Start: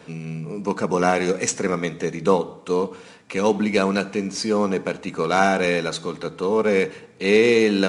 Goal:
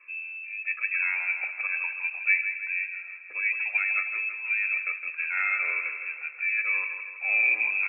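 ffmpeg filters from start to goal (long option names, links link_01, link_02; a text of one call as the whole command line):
ffmpeg -i in.wav -filter_complex "[0:a]afftfilt=real='re*pow(10,14/40*sin(2*PI*(1.8*log(max(b,1)*sr/1024/100)/log(2)-(1.2)*(pts-256)/sr)))':imag='im*pow(10,14/40*sin(2*PI*(1.8*log(max(b,1)*sr/1024/100)/log(2)-(1.2)*(pts-256)/sr)))':win_size=1024:overlap=0.75,asplit=2[link_01][link_02];[link_02]aecho=0:1:242:0.075[link_03];[link_01][link_03]amix=inputs=2:normalize=0,lowpass=frequency=2400:width_type=q:width=0.5098,lowpass=frequency=2400:width_type=q:width=0.6013,lowpass=frequency=2400:width_type=q:width=0.9,lowpass=frequency=2400:width_type=q:width=2.563,afreqshift=-2800,aderivative,asplit=2[link_04][link_05];[link_05]aecho=0:1:162|324|486|648|810|972|1134:0.376|0.214|0.122|0.0696|0.0397|0.0226|0.0129[link_06];[link_04][link_06]amix=inputs=2:normalize=0" out.wav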